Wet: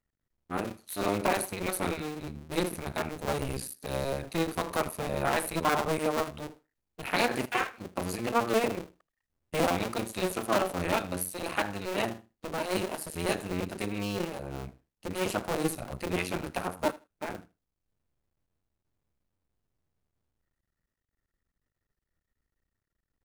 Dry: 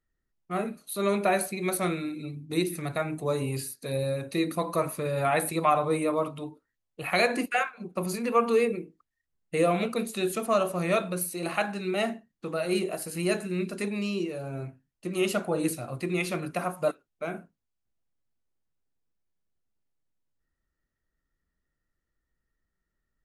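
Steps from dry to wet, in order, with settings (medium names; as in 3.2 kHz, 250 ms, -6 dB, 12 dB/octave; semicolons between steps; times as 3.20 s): cycle switcher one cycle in 2, muted; feedback delay 79 ms, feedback 16%, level -21 dB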